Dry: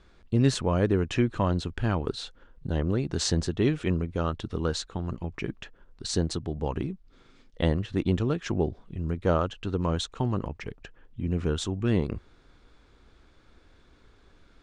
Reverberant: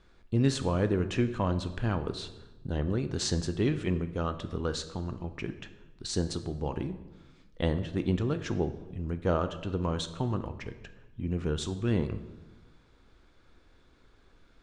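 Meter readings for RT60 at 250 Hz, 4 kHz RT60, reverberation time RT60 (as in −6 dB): 1.4 s, 0.80 s, 1.1 s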